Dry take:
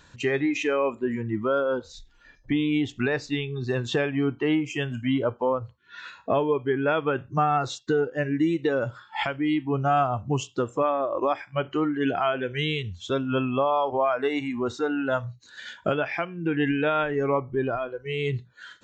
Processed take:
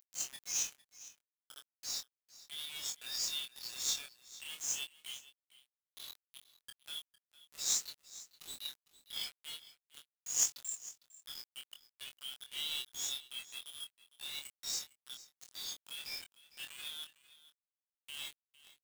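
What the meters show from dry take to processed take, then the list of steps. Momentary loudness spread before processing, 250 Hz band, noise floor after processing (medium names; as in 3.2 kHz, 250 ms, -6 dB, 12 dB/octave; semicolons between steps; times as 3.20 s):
6 LU, under -40 dB, under -85 dBFS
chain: reverse spectral sustain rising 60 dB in 0.40 s; inverse Chebyshev high-pass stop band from 1 kHz, stop band 80 dB; spectral noise reduction 18 dB; in parallel at -1.5 dB: compressor with a negative ratio -55 dBFS, ratio -0.5; on the sum: companded quantiser 4-bit; doubling 24 ms -5.5 dB; delay 455 ms -18 dB; trim +8 dB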